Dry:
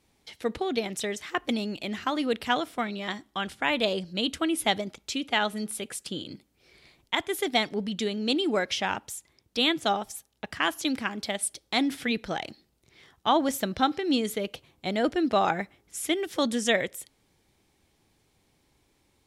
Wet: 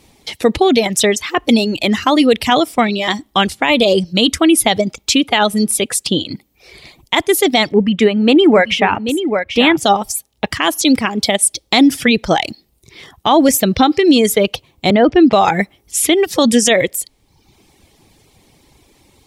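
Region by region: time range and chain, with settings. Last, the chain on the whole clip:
7.72–9.77 s: resonant high shelf 3.1 kHz -12 dB, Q 1.5 + delay 787 ms -9 dB
14.90–15.33 s: low-pass 2.9 kHz + three bands compressed up and down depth 40%
whole clip: reverb removal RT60 0.79 s; peaking EQ 1.5 kHz -6.5 dB 0.46 oct; loudness maximiser +20 dB; trim -1 dB

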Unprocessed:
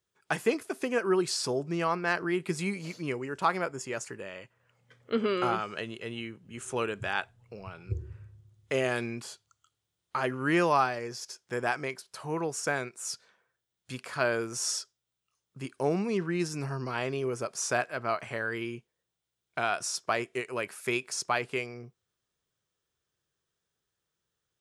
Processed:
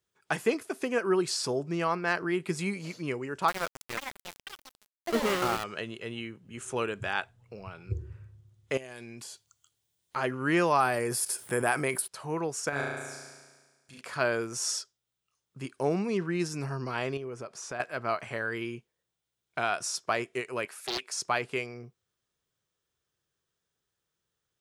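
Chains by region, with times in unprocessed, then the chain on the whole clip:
3.48–5.64 s: small samples zeroed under -29 dBFS + ever faster or slower copies 494 ms, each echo +7 st, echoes 2, each echo -6 dB
8.77–10.16 s: treble shelf 5.1 kHz +9.5 dB + band-stop 1.3 kHz, Q 6.6 + compression 16:1, threshold -39 dBFS
10.80–12.08 s: resonant high shelf 7.7 kHz +10 dB, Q 3 + level flattener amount 50%
12.69–14.01 s: level held to a coarse grid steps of 17 dB + flutter echo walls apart 6.1 m, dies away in 1.4 s
17.17–17.80 s: low-pass 3.6 kHz 6 dB/octave + compression 2:1, threshold -40 dBFS
20.65–21.22 s: Bessel high-pass 480 Hz + loudspeaker Doppler distortion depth 0.57 ms
whole clip: none

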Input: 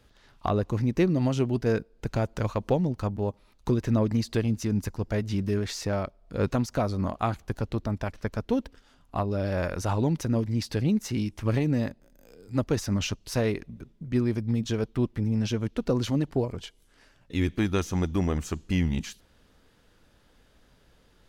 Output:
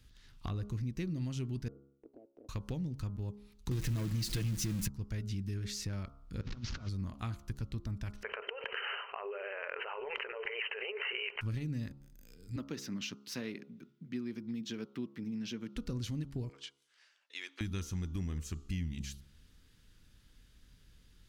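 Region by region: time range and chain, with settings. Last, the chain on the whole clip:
1.68–2.49 s: elliptic band-pass 280–700 Hz + compression 2.5:1, threshold -48 dBFS + transient shaper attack +4 dB, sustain -6 dB
3.71–4.88 s: jump at every zero crossing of -32 dBFS + comb 6.2 ms, depth 62% + waveshaping leveller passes 2
6.41–6.89 s: one-bit delta coder 32 kbps, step -34 dBFS + low-pass 4 kHz 6 dB/octave + compressor with a negative ratio -32 dBFS, ratio -0.5
8.23–11.41 s: brick-wall FIR band-pass 390–3100 Hz + level flattener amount 100%
12.56–15.76 s: high-pass 200 Hz 24 dB/octave + peaking EQ 9.4 kHz -12 dB 1.1 oct
16.49–17.61 s: high-pass 580 Hz 24 dB/octave + distance through air 69 m
whole clip: amplifier tone stack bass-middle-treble 6-0-2; de-hum 68.77 Hz, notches 21; compression 2.5:1, threshold -52 dBFS; trim +14 dB

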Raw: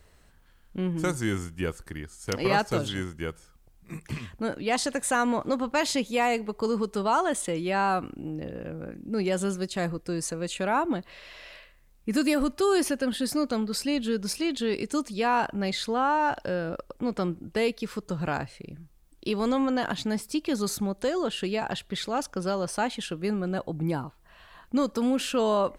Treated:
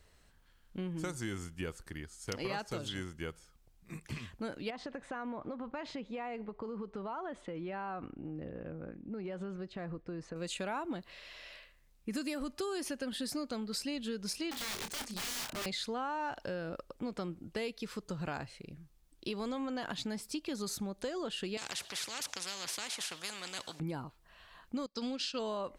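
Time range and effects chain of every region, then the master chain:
4.70–10.36 s: low-pass 1.9 kHz + compression 10:1, threshold -29 dBFS
14.51–15.66 s: integer overflow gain 29 dB + doubling 28 ms -7 dB
21.57–23.80 s: band-pass 120–5900 Hz + tilt EQ +3 dB/octave + spectrum-flattening compressor 4:1
24.86–25.39 s: resonant low-pass 4.8 kHz, resonance Q 3.2 + treble shelf 3.8 kHz +7 dB + upward expansion 2.5:1, over -40 dBFS
whole clip: peaking EQ 4.4 kHz +4 dB 2 oct; compression, threshold -27 dBFS; trim -7 dB

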